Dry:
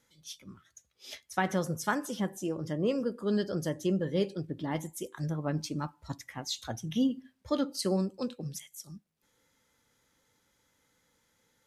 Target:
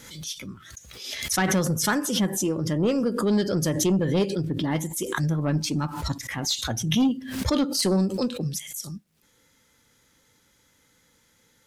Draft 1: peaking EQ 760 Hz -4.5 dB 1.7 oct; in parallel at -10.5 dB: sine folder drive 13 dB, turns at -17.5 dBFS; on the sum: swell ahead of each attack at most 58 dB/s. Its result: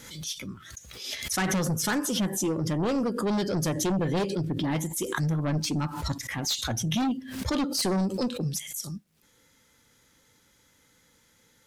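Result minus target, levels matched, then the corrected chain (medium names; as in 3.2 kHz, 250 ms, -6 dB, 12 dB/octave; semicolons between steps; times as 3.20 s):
sine folder: distortion +13 dB
peaking EQ 760 Hz -4.5 dB 1.7 oct; in parallel at -10.5 dB: sine folder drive 13 dB, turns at -11.5 dBFS; on the sum: swell ahead of each attack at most 58 dB/s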